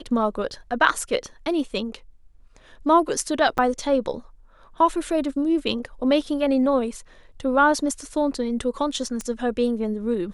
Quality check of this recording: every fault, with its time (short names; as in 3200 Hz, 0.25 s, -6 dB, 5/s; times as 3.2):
3.58–3.59 gap 7 ms
9.21 pop -17 dBFS